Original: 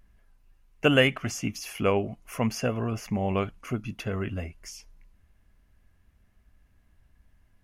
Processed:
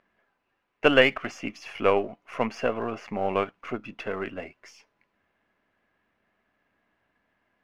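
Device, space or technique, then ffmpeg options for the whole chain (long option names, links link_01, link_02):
crystal radio: -af "highpass=360,lowpass=2600,aeval=exprs='if(lt(val(0),0),0.708*val(0),val(0))':channel_layout=same,volume=5.5dB"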